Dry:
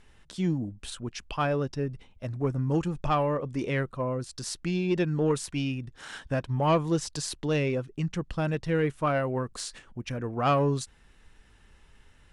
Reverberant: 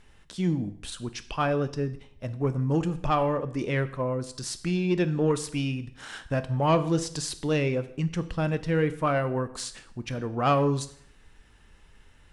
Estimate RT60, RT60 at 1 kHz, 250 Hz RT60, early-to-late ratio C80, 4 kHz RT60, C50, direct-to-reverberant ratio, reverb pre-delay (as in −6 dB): 0.65 s, 0.65 s, 0.70 s, 17.5 dB, 0.60 s, 15.5 dB, 12.0 dB, 7 ms